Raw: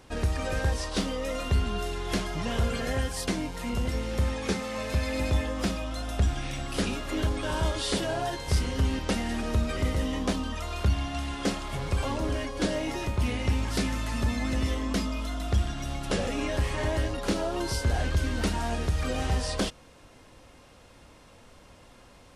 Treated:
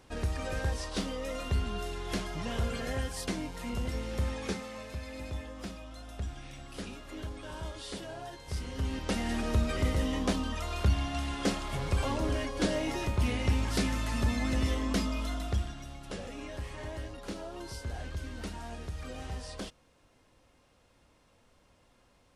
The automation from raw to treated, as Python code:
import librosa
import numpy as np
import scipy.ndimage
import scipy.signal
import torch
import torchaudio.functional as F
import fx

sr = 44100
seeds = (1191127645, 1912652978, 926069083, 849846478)

y = fx.gain(x, sr, db=fx.line((4.44, -5.0), (4.96, -12.5), (8.43, -12.5), (9.3, -1.5), (15.32, -1.5), (15.93, -12.0)))